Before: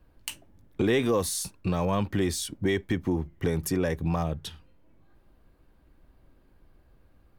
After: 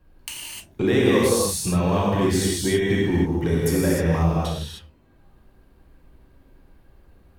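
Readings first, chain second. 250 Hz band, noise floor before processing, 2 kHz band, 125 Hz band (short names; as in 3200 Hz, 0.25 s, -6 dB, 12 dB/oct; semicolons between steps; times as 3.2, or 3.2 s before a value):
+7.0 dB, -62 dBFS, +6.5 dB, +7.5 dB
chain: non-linear reverb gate 0.33 s flat, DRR -5.5 dB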